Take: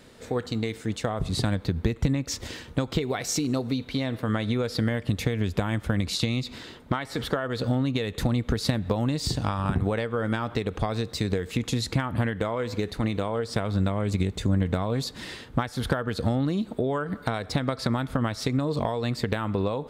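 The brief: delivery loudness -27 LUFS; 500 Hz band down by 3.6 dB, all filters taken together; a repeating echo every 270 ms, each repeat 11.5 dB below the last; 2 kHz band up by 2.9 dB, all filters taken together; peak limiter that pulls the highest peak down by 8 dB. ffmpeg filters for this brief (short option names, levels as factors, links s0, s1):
-af "equalizer=f=500:t=o:g=-4.5,equalizer=f=2000:t=o:g=4,alimiter=limit=0.141:level=0:latency=1,aecho=1:1:270|540|810:0.266|0.0718|0.0194,volume=1.26"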